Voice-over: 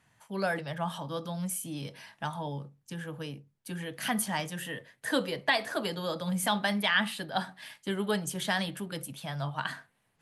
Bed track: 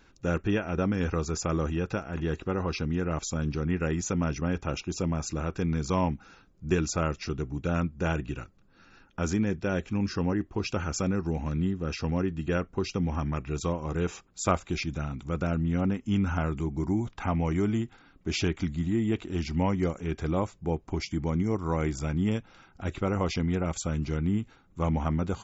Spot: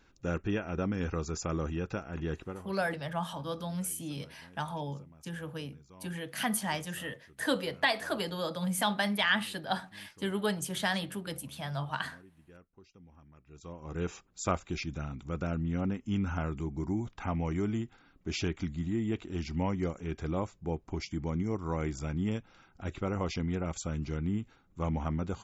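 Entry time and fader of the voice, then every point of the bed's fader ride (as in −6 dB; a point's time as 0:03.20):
2.35 s, −1.0 dB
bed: 0:02.40 −5 dB
0:02.83 −28 dB
0:13.34 −28 dB
0:14.02 −5 dB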